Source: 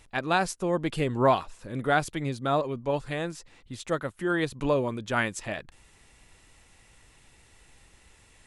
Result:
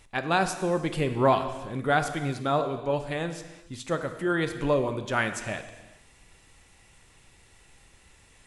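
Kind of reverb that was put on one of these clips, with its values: gated-style reverb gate 450 ms falling, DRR 7.5 dB

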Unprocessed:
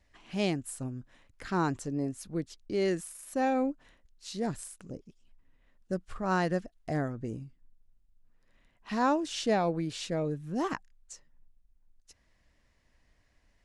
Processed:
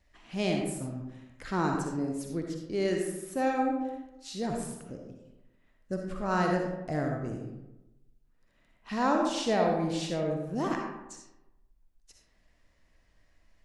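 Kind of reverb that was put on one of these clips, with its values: algorithmic reverb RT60 1 s, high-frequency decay 0.5×, pre-delay 20 ms, DRR 1 dB; trim -1 dB

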